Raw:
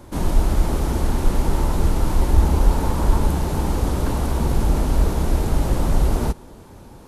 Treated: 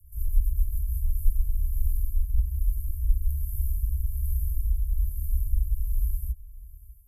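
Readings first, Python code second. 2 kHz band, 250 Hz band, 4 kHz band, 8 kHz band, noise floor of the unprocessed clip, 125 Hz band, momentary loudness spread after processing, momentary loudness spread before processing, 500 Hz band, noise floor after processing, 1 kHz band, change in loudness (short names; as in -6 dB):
under -40 dB, -36.5 dB, under -40 dB, -13.5 dB, -43 dBFS, -8.5 dB, 3 LU, 4 LU, under -40 dB, -47 dBFS, under -40 dB, -8.5 dB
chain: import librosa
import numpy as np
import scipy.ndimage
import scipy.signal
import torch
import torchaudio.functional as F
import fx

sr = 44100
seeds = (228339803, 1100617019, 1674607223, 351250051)

p1 = scipy.signal.sosfilt(scipy.signal.cheby2(4, 80, [390.0, 3700.0], 'bandstop', fs=sr, output='sos'), x)
p2 = fx.high_shelf_res(p1, sr, hz=1900.0, db=13.5, q=1.5)
p3 = fx.rider(p2, sr, range_db=10, speed_s=0.5)
p4 = fx.small_body(p3, sr, hz=(630.0, 1200.0, 1700.0, 4000.0), ring_ms=25, db=12)
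p5 = fx.rotary_switch(p4, sr, hz=8.0, then_hz=1.2, switch_at_s=0.45)
p6 = p5 + fx.echo_single(p5, sr, ms=596, db=-19.5, dry=0)
y = p6 * 10.0 ** (-4.0 / 20.0)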